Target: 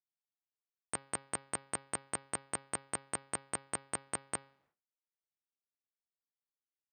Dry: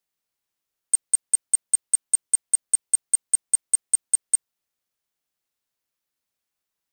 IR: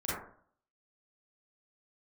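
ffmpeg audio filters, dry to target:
-af "highpass=86,bandreject=f=136.5:t=h:w=4,bandreject=f=273:t=h:w=4,bandreject=f=409.5:t=h:w=4,bandreject=f=546:t=h:w=4,bandreject=f=682.5:t=h:w=4,bandreject=f=819:t=h:w=4,bandreject=f=955.5:t=h:w=4,bandreject=f=1.092k:t=h:w=4,bandreject=f=1.2285k:t=h:w=4,bandreject=f=1.365k:t=h:w=4,bandreject=f=1.5015k:t=h:w=4,bandreject=f=1.638k:t=h:w=4,bandreject=f=1.7745k:t=h:w=4,bandreject=f=1.911k:t=h:w=4,bandreject=f=2.0475k:t=h:w=4,bandreject=f=2.184k:t=h:w=4,bandreject=f=2.3205k:t=h:w=4,bandreject=f=2.457k:t=h:w=4,bandreject=f=2.5935k:t=h:w=4,bandreject=f=2.73k:t=h:w=4,bandreject=f=2.8665k:t=h:w=4,bandreject=f=3.003k:t=h:w=4,bandreject=f=3.1395k:t=h:w=4,bandreject=f=3.276k:t=h:w=4,bandreject=f=3.4125k:t=h:w=4,bandreject=f=3.549k:t=h:w=4,bandreject=f=3.6855k:t=h:w=4,bandreject=f=3.822k:t=h:w=4,bandreject=f=3.9585k:t=h:w=4,bandreject=f=4.095k:t=h:w=4,bandreject=f=4.2315k:t=h:w=4,bandreject=f=4.368k:t=h:w=4,bandreject=f=4.5045k:t=h:w=4,bandreject=f=4.641k:t=h:w=4,bandreject=f=4.7775k:t=h:w=4,bandreject=f=4.914k:t=h:w=4,bandreject=f=5.0505k:t=h:w=4,bandreject=f=5.187k:t=h:w=4,agate=range=-33dB:threshold=-59dB:ratio=3:detection=peak,lowpass=1.3k,volume=15dB"

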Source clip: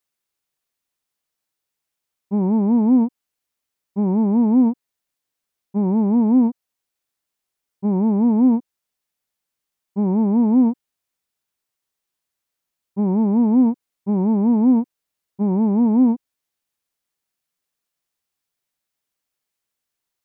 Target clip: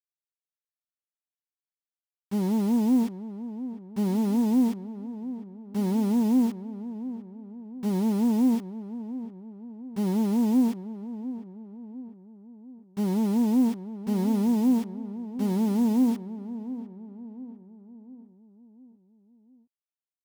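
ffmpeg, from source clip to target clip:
-filter_complex "[0:a]equalizer=f=140:w=8:g=-3,acrusher=bits=5:mix=0:aa=0.000001,asplit=2[a][b];[b]adelay=702,lowpass=f=1.1k:p=1,volume=-12.5dB,asplit=2[c][d];[d]adelay=702,lowpass=f=1.1k:p=1,volume=0.51,asplit=2[e][f];[f]adelay=702,lowpass=f=1.1k:p=1,volume=0.51,asplit=2[g][h];[h]adelay=702,lowpass=f=1.1k:p=1,volume=0.51,asplit=2[i][j];[j]adelay=702,lowpass=f=1.1k:p=1,volume=0.51[k];[a][c][e][g][i][k]amix=inputs=6:normalize=0,volume=-7dB"

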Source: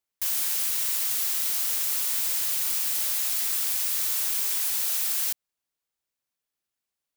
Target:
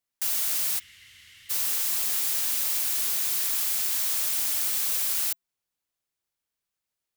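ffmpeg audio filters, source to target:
-filter_complex "[0:a]asplit=3[a][b][c];[a]afade=t=out:st=0.78:d=0.02[d];[b]asplit=3[e][f][g];[e]bandpass=f=270:t=q:w=8,volume=0dB[h];[f]bandpass=f=2.29k:t=q:w=8,volume=-6dB[i];[g]bandpass=f=3.01k:t=q:w=8,volume=-9dB[j];[h][i][j]amix=inputs=3:normalize=0,afade=t=in:st=0.78:d=0.02,afade=t=out:st=1.49:d=0.02[k];[c]afade=t=in:st=1.49:d=0.02[l];[d][k][l]amix=inputs=3:normalize=0,afreqshift=-180"

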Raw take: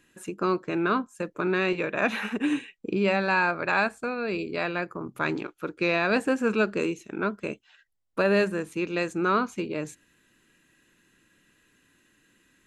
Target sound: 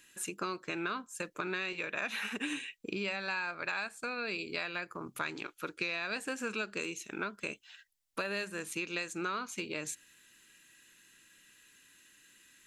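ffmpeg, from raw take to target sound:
-af "tiltshelf=f=1.5k:g=-8.5,acompressor=threshold=-33dB:ratio=6"

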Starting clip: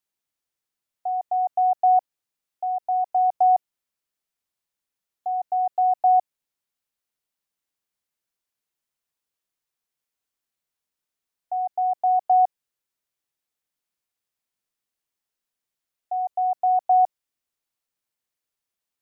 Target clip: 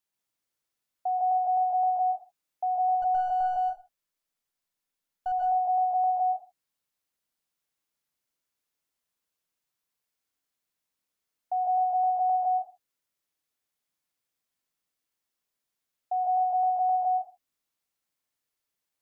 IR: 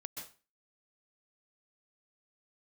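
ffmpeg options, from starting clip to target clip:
-filter_complex "[0:a]asettb=1/sr,asplit=3[a][b][c];[a]atrim=end=3.024[d];[b]atrim=start=3.02:end=5.32,asetpts=PTS-STARTPTS,afade=t=in:d=0.004:c=qsin,afade=t=out:st=2.296:d=0.004:c=qsin,aeval=exprs='if(lt(val(0),0),0.708*val(0),val(0))':c=same[e];[c]atrim=start=5.316[f];[d][e]acrossfade=d=0.004:c1=hsin:c2=qsin[g];[g][f]acrossfade=d=0.004:c1=qsin:c2=hsin,alimiter=limit=-22dB:level=0:latency=1:release=83[h];[1:a]atrim=start_sample=2205,afade=t=out:st=0.37:d=0.01,atrim=end_sample=16758[i];[h][i]afir=irnorm=-1:irlink=0,volume=3.5dB"

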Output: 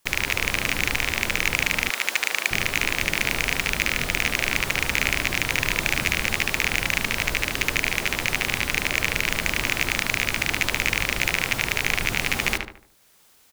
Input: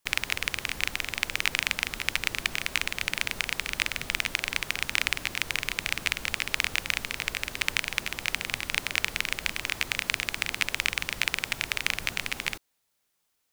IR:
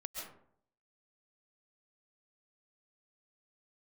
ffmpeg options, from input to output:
-filter_complex "[0:a]asplit=2[a][b];[b]adelay=74,lowpass=f=2.1k:p=1,volume=-5dB,asplit=2[c][d];[d]adelay=74,lowpass=f=2.1k:p=1,volume=0.4,asplit=2[e][f];[f]adelay=74,lowpass=f=2.1k:p=1,volume=0.4,asplit=2[g][h];[h]adelay=74,lowpass=f=2.1k:p=1,volume=0.4,asplit=2[i][j];[j]adelay=74,lowpass=f=2.1k:p=1,volume=0.4[k];[a][c][e][g][i][k]amix=inputs=6:normalize=0,dynaudnorm=f=170:g=5:m=10dB,asettb=1/sr,asplit=3[l][m][n];[l]atrim=end=1.904[o];[m]atrim=start=1.9:end=2.51,asetpts=PTS-STARTPTS,afade=t=in:d=0.004:c=qsin,afade=t=out:st=0.606:d=0.004:c=qsin,highpass=540[p];[n]atrim=start=2.506[q];[o][p]acrossfade=d=0.004:c1=hsin:c2=qsin[r];[r][q]acrossfade=d=0.004:c1=qsin:c2=hsin,asoftclip=type=tanh:threshold=-16.5dB,volume=9dB"

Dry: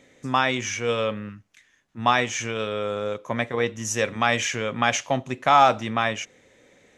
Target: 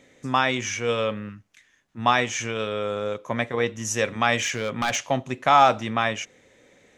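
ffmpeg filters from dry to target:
-filter_complex "[0:a]asplit=3[a][b][c];[a]afade=t=out:st=4.37:d=0.02[d];[b]asoftclip=type=hard:threshold=-19dB,afade=t=in:st=4.37:d=0.02,afade=t=out:st=4.95:d=0.02[e];[c]afade=t=in:st=4.95:d=0.02[f];[d][e][f]amix=inputs=3:normalize=0"

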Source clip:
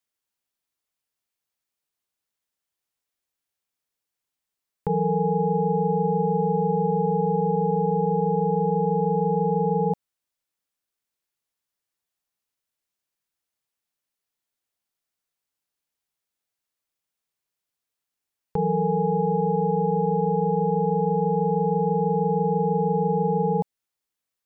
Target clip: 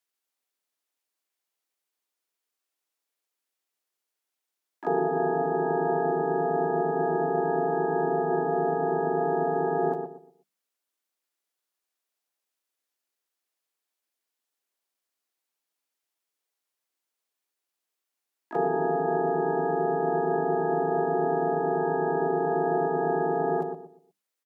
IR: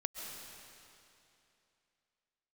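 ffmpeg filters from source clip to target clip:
-filter_complex "[0:a]bandreject=f=50:t=h:w=6,bandreject=f=100:t=h:w=6,bandreject=f=150:t=h:w=6,bandreject=f=200:t=h:w=6,bandreject=f=250:t=h:w=6,bandreject=f=300:t=h:w=6,bandreject=f=350:t=h:w=6,asplit=4[a][b][c][d];[b]asetrate=37084,aresample=44100,atempo=1.18921,volume=-1dB[e];[c]asetrate=66075,aresample=44100,atempo=0.66742,volume=-10dB[f];[d]asetrate=88200,aresample=44100,atempo=0.5,volume=-12dB[g];[a][e][f][g]amix=inputs=4:normalize=0,highpass=f=250:w=0.5412,highpass=f=250:w=1.3066,asplit=2[h][i];[i]adelay=121,lowpass=f=930:p=1,volume=-6dB,asplit=2[j][k];[k]adelay=121,lowpass=f=930:p=1,volume=0.32,asplit=2[l][m];[m]adelay=121,lowpass=f=930:p=1,volume=0.32,asplit=2[n][o];[o]adelay=121,lowpass=f=930:p=1,volume=0.32[p];[j][l][n][p]amix=inputs=4:normalize=0[q];[h][q]amix=inputs=2:normalize=0,volume=-2.5dB"

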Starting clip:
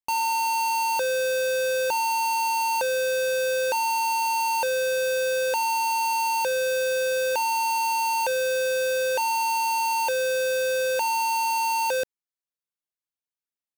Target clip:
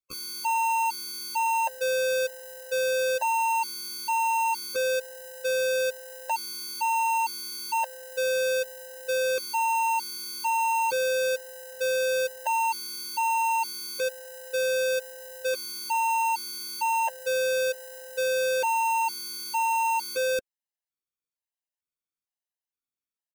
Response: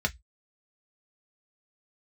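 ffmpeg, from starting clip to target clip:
-af "atempo=0.59,afftfilt=real='re*gt(sin(2*PI*1.1*pts/sr)*(1-2*mod(floor(b*sr/1024/530),2)),0)':imag='im*gt(sin(2*PI*1.1*pts/sr)*(1-2*mod(floor(b*sr/1024/530),2)),0)':win_size=1024:overlap=0.75"

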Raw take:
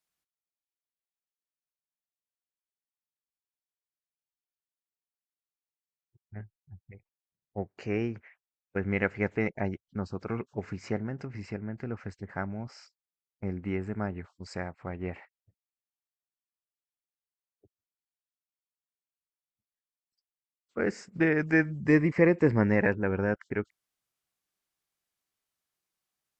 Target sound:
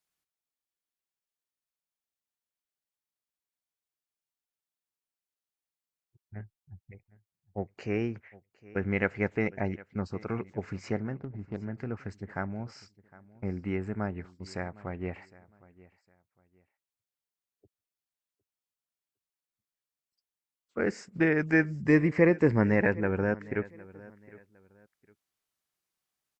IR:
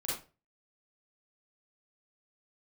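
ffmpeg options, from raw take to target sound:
-filter_complex "[0:a]asettb=1/sr,asplit=3[a][b][c];[a]atrim=end=11.144[d];[b]atrim=start=11.14:end=11.61,asetpts=PTS-STARTPTS,afade=t=in:d=0.004:c=qsin,afade=t=out:st=0.466:d=0.004:c=qsin,adynamicsmooth=sensitivity=2.5:basefreq=540[e];[c]atrim=start=11.606[f];[d][e]acrossfade=d=0.004:c1=hsin:c2=qsin[g];[g][f]acrossfade=d=0.004:c1=qsin:c2=hsin,aecho=1:1:759|1518:0.0891|0.025"

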